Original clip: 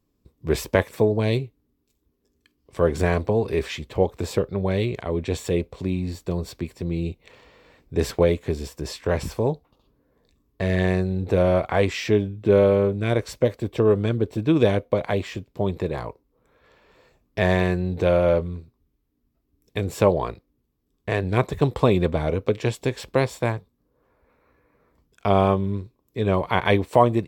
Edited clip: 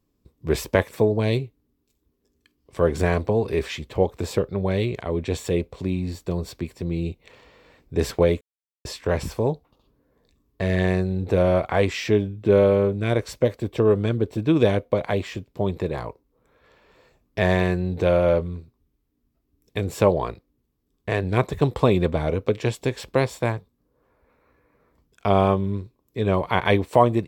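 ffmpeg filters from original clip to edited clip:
ffmpeg -i in.wav -filter_complex "[0:a]asplit=3[link_01][link_02][link_03];[link_01]atrim=end=8.41,asetpts=PTS-STARTPTS,afade=type=out:start_time=8.406:duration=0.004:curve=hsin[link_04];[link_02]atrim=start=8.41:end=8.85,asetpts=PTS-STARTPTS,volume=0[link_05];[link_03]atrim=start=8.85,asetpts=PTS-STARTPTS,afade=type=in:duration=0.004:curve=hsin[link_06];[link_04][link_05][link_06]concat=n=3:v=0:a=1" out.wav

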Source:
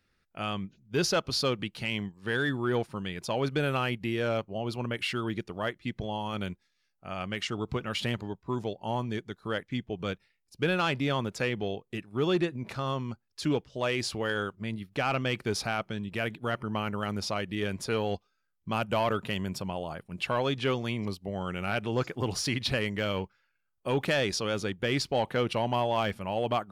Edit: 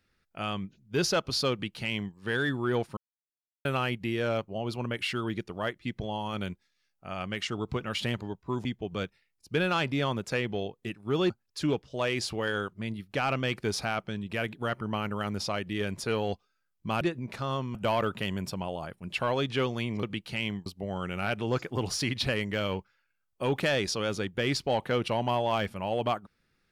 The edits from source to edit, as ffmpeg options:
ffmpeg -i in.wav -filter_complex "[0:a]asplit=9[link_01][link_02][link_03][link_04][link_05][link_06][link_07][link_08][link_09];[link_01]atrim=end=2.97,asetpts=PTS-STARTPTS,afade=type=out:start_time=2.966:duration=0.004:curve=hsin[link_10];[link_02]atrim=start=2.97:end=3.65,asetpts=PTS-STARTPTS,volume=0[link_11];[link_03]atrim=start=3.65:end=8.652,asetpts=PTS-STARTPTS,afade=type=in:duration=0.004:curve=hsin[link_12];[link_04]atrim=start=9.728:end=12.382[link_13];[link_05]atrim=start=13.118:end=18.832[link_14];[link_06]atrim=start=12.378:end=13.122[link_15];[link_07]atrim=start=18.828:end=21.112[link_16];[link_08]atrim=start=1.518:end=2.152[link_17];[link_09]atrim=start=21.108[link_18];[link_10][link_11][link_12]concat=n=3:v=0:a=1[link_19];[link_19][link_13]acrossfade=duration=0.004:curve1=hsin:curve2=hsin[link_20];[link_20][link_14]acrossfade=duration=0.004:curve1=hsin:curve2=hsin[link_21];[link_21][link_15]acrossfade=duration=0.004:curve1=hsin:curve2=hsin[link_22];[link_22][link_16]acrossfade=duration=0.004:curve1=hsin:curve2=hsin[link_23];[link_23][link_17]acrossfade=duration=0.004:curve1=hsin:curve2=hsin[link_24];[link_24][link_18]acrossfade=duration=0.004:curve1=hsin:curve2=hsin" out.wav

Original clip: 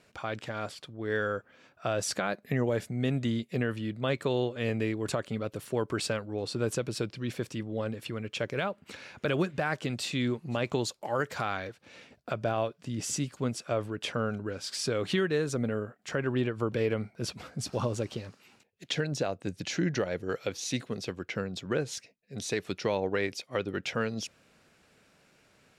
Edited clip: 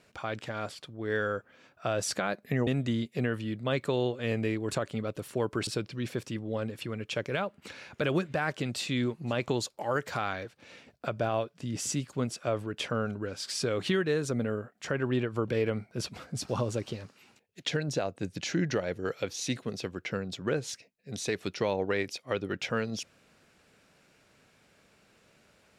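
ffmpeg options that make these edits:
ffmpeg -i in.wav -filter_complex "[0:a]asplit=3[link_01][link_02][link_03];[link_01]atrim=end=2.672[link_04];[link_02]atrim=start=3.038:end=6.042[link_05];[link_03]atrim=start=6.908[link_06];[link_04][link_05]acrossfade=duration=0.004:curve1=hsin:curve2=hsin[link_07];[link_07][link_06]acrossfade=duration=0.004:curve1=hsin:curve2=hsin" out.wav

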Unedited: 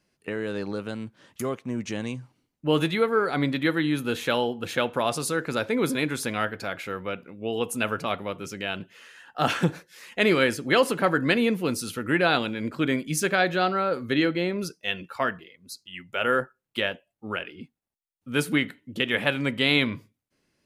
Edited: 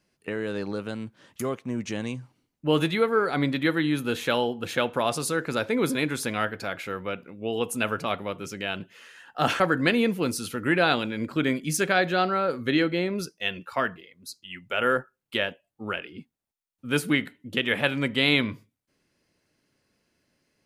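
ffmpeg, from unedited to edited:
ffmpeg -i in.wav -filter_complex "[0:a]asplit=2[link_01][link_02];[link_01]atrim=end=9.602[link_03];[link_02]atrim=start=11.028[link_04];[link_03][link_04]acrossfade=duration=0.004:curve1=hsin:curve2=hsin" out.wav

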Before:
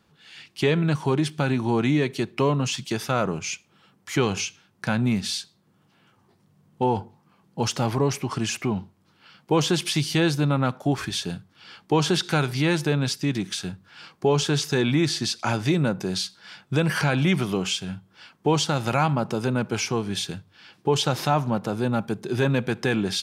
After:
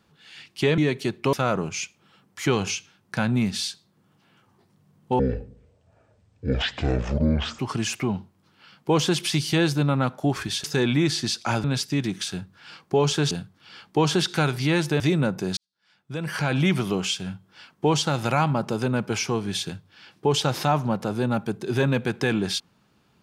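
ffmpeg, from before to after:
ffmpeg -i in.wav -filter_complex "[0:a]asplit=10[link_01][link_02][link_03][link_04][link_05][link_06][link_07][link_08][link_09][link_10];[link_01]atrim=end=0.782[link_11];[link_02]atrim=start=1.918:end=2.472[link_12];[link_03]atrim=start=3.028:end=6.894[link_13];[link_04]atrim=start=6.89:end=8.21,asetpts=PTS-STARTPTS,asetrate=24255,aresample=44100[link_14];[link_05]atrim=start=8.206:end=11.262[link_15];[link_06]atrim=start=14.618:end=15.622[link_16];[link_07]atrim=start=12.948:end=14.622[link_17];[link_08]atrim=start=11.258:end=12.952[link_18];[link_09]atrim=start=15.618:end=16.19,asetpts=PTS-STARTPTS,afade=type=out:start_time=0.568:duration=0.004:curve=hsin[link_19];[link_10]atrim=start=16.19,asetpts=PTS-STARTPTS,afade=type=in:duration=1.02:curve=qua[link_20];[link_11][link_12]acrossfade=duration=0.004:curve1=hsin:curve2=hsin[link_21];[link_21][link_13]acrossfade=duration=0.004:curve1=hsin:curve2=hsin[link_22];[link_22][link_14]acrossfade=duration=0.004:curve1=hsin:curve2=hsin[link_23];[link_23][link_15]acrossfade=duration=0.004:curve1=hsin:curve2=hsin[link_24];[link_24][link_16]acrossfade=duration=0.004:curve1=hsin:curve2=hsin[link_25];[link_25][link_17]acrossfade=duration=0.004:curve1=hsin:curve2=hsin[link_26];[link_26][link_18]acrossfade=duration=0.004:curve1=hsin:curve2=hsin[link_27];[link_19][link_20]concat=n=2:v=0:a=1[link_28];[link_27][link_28]acrossfade=duration=0.004:curve1=hsin:curve2=hsin" out.wav

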